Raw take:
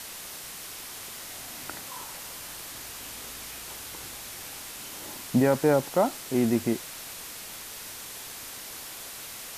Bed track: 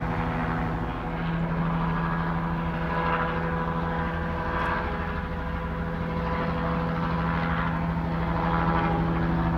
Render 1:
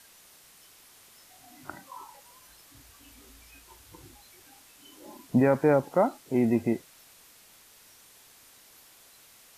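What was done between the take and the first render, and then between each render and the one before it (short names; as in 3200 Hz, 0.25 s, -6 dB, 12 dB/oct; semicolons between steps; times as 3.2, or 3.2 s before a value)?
noise print and reduce 15 dB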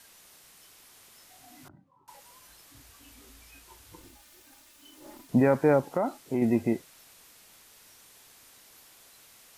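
1.68–2.08 band-pass 130 Hz, Q 1.6; 4–5.29 minimum comb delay 3.3 ms; 5.96–6.42 compressor 3:1, threshold -23 dBFS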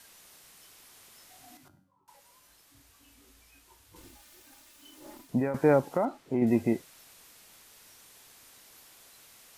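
1.57–3.96 resonator 94 Hz, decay 0.65 s; 5.14–5.54 fade out, to -12.5 dB; 6.05–6.47 LPF 2200 Hz 6 dB/oct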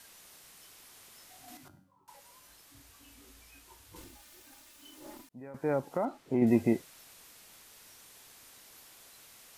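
1.48–4.04 gain +3 dB; 5.29–6.4 fade in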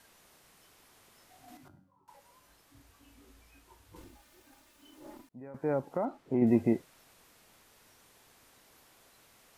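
high shelf 2200 Hz -9.5 dB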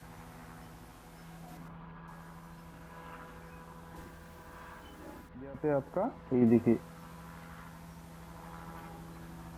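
add bed track -23 dB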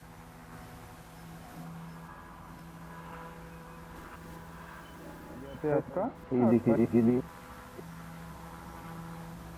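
reverse delay 0.52 s, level 0 dB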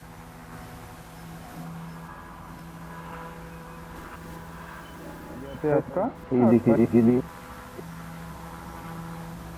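gain +6 dB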